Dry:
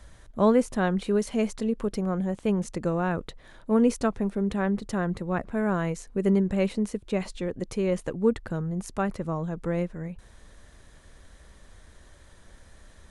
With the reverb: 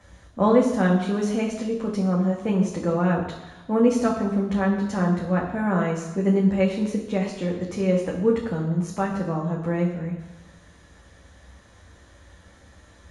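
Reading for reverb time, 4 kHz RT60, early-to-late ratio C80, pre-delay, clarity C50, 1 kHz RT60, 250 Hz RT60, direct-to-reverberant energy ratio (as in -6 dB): 1.1 s, 1.1 s, 8.0 dB, 3 ms, 6.0 dB, 1.1 s, 1.0 s, -2.0 dB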